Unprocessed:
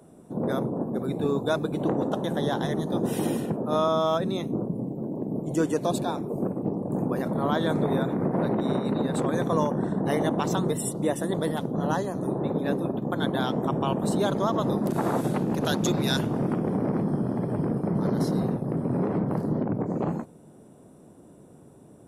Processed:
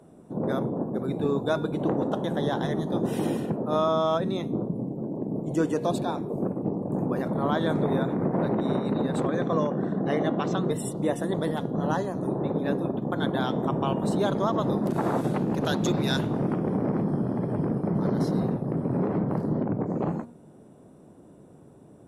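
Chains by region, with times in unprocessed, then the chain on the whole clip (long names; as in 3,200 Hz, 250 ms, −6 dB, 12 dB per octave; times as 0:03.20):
0:09.27–0:10.71: band-pass filter 120–5,200 Hz + notch filter 910 Hz, Q 7.2
whole clip: high-shelf EQ 6,800 Hz −9.5 dB; hum removal 237.1 Hz, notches 20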